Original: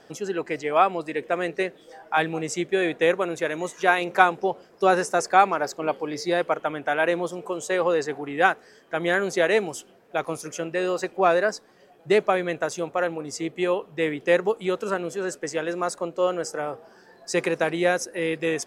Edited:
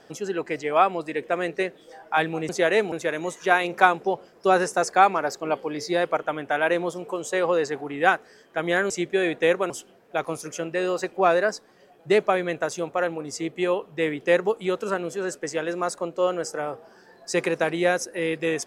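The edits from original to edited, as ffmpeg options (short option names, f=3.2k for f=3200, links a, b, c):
-filter_complex "[0:a]asplit=5[a][b][c][d][e];[a]atrim=end=2.492[f];[b]atrim=start=9.268:end=9.702[g];[c]atrim=start=3.288:end=9.272[h];[d]atrim=start=2.488:end=3.292[i];[e]atrim=start=9.698[j];[f][g]acrossfade=d=0.004:c1=hsin:c2=hsin[k];[k][h]acrossfade=d=0.004:c1=hsin:c2=hsin[l];[l][i]acrossfade=d=0.004:c1=hsin:c2=hsin[m];[m][j]acrossfade=d=0.004:c1=hsin:c2=hsin"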